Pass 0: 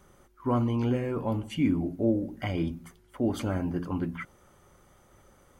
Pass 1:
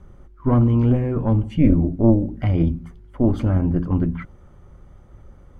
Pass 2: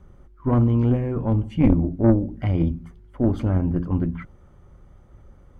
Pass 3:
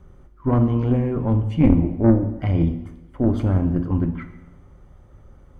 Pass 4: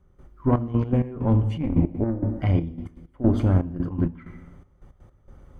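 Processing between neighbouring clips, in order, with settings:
harmonic generator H 2 −8 dB, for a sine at −14 dBFS; RIAA equalisation playback; level +2 dB
harmonic generator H 3 −20 dB, 4 −27 dB, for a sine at −4 dBFS
convolution reverb RT60 1.0 s, pre-delay 5 ms, DRR 8 dB; level +1 dB
gate pattern "..xxxx..x.x" 162 BPM −12 dB

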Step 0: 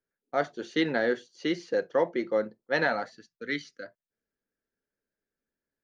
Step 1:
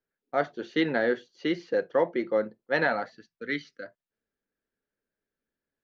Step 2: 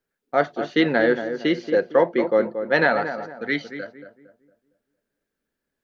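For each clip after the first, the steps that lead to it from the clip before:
low-pass filter 3,900 Hz 12 dB per octave; level +1 dB
feedback echo with a low-pass in the loop 229 ms, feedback 38%, low-pass 1,300 Hz, level −8.5 dB; level +6.5 dB

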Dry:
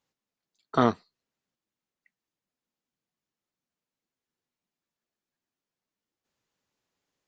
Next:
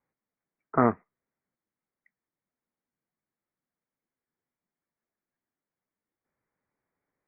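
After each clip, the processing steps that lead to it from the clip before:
Butterworth low-pass 2,300 Hz 96 dB per octave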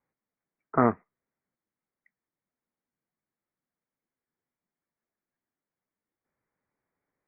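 no processing that can be heard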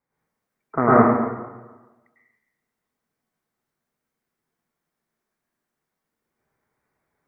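dense smooth reverb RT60 1.2 s, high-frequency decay 0.8×, pre-delay 90 ms, DRR −9.5 dB

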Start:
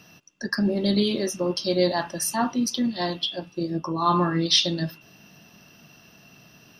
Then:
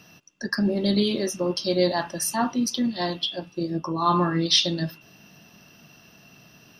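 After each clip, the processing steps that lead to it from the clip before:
no processing that can be heard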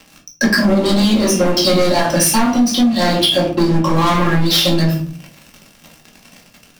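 leveller curve on the samples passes 5
rectangular room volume 300 cubic metres, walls furnished, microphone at 2.2 metres
downward compressor 10 to 1, threshold −10 dBFS, peak gain reduction 12 dB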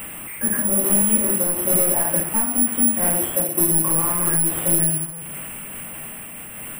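linear delta modulator 16 kbit/s, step −22 dBFS
bad sample-rate conversion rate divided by 4×, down filtered, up zero stuff
amplitude modulation by smooth noise, depth 55%
level −8.5 dB

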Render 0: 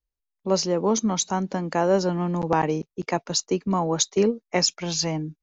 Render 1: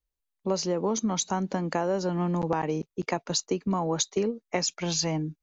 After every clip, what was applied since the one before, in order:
notch filter 5,300 Hz, Q 20
downward compressor, threshold −23 dBFS, peak gain reduction 8.5 dB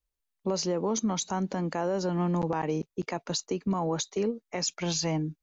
brickwall limiter −20 dBFS, peak gain reduction 7.5 dB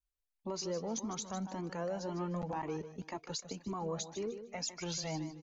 repeating echo 152 ms, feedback 29%, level −11 dB
flanger whose copies keep moving one way rising 1.9 Hz
level −4.5 dB

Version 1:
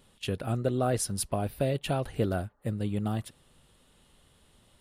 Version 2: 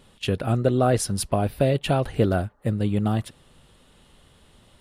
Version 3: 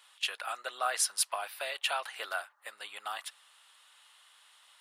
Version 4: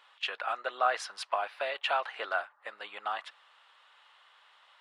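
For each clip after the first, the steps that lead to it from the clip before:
high-shelf EQ 7,800 Hz −7.5 dB; level +7.5 dB
high-pass filter 990 Hz 24 dB per octave
head-to-tape spacing loss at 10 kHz 31 dB; level +8 dB

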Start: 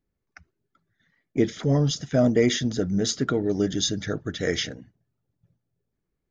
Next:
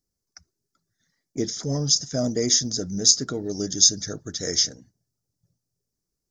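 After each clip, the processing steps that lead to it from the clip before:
high shelf with overshoot 3,900 Hz +12 dB, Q 3
level −5 dB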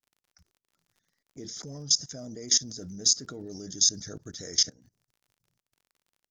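output level in coarse steps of 20 dB
surface crackle 45 per second −52 dBFS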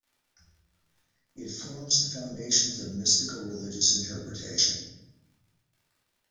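convolution reverb RT60 0.85 s, pre-delay 3 ms, DRR −7.5 dB
level −5.5 dB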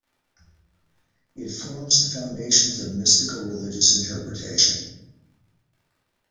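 one half of a high-frequency compander decoder only
level +6.5 dB

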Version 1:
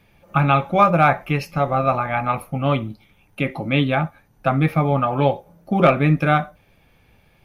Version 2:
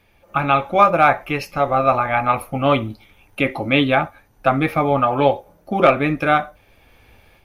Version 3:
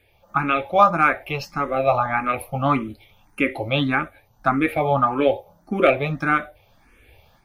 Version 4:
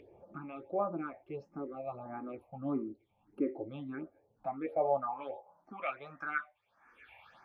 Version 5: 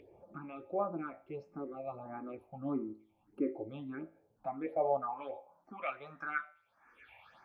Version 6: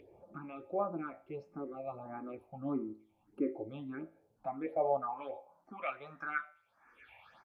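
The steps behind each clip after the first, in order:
parametric band 160 Hz −12 dB 0.68 octaves; automatic gain control gain up to 7 dB
frequency shifter mixed with the dry sound +1.7 Hz
band-pass filter sweep 360 Hz → 1,400 Hz, 0:04.08–0:06.08; all-pass phaser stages 6, 1.5 Hz, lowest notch 370–4,200 Hz; upward compression, threshold −36 dBFS; level −6.5 dB
tuned comb filter 54 Hz, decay 0.52 s, harmonics all, mix 40%; level +2 dB
downsampling to 32,000 Hz

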